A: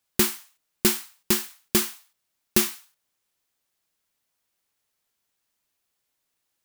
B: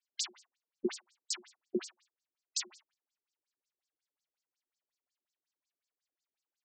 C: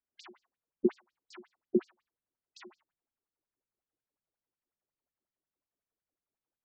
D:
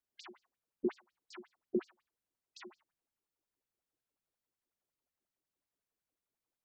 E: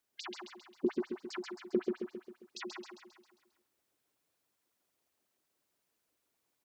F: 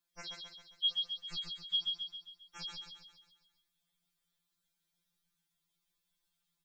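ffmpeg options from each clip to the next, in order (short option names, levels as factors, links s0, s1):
-af "afftfilt=real='re*between(b*sr/1024,300*pow(6200/300,0.5+0.5*sin(2*PI*5.5*pts/sr))/1.41,300*pow(6200/300,0.5+0.5*sin(2*PI*5.5*pts/sr))*1.41)':imag='im*between(b*sr/1024,300*pow(6200/300,0.5+0.5*sin(2*PI*5.5*pts/sr))/1.41,300*pow(6200/300,0.5+0.5*sin(2*PI*5.5*pts/sr))*1.41)':win_size=1024:overlap=0.75,volume=0.531"
-af "lowpass=1500,lowshelf=f=460:g=10"
-af "alimiter=limit=0.0668:level=0:latency=1:release=19"
-filter_complex "[0:a]acompressor=threshold=0.01:ratio=2,highpass=f=120:p=1,asplit=2[s0][s1];[s1]aecho=0:1:134|268|402|536|670|804|938:0.668|0.348|0.181|0.094|0.0489|0.0254|0.0132[s2];[s0][s2]amix=inputs=2:normalize=0,volume=2.66"
-af "afftfilt=real='real(if(lt(b,272),68*(eq(floor(b/68),0)*2+eq(floor(b/68),1)*3+eq(floor(b/68),2)*0+eq(floor(b/68),3)*1)+mod(b,68),b),0)':imag='imag(if(lt(b,272),68*(eq(floor(b/68),0)*2+eq(floor(b/68),1)*3+eq(floor(b/68),2)*0+eq(floor(b/68),3)*1)+mod(b,68),b),0)':win_size=2048:overlap=0.75,asubboost=boost=11:cutoff=130,afftfilt=real='re*2.83*eq(mod(b,8),0)':imag='im*2.83*eq(mod(b,8),0)':win_size=2048:overlap=0.75"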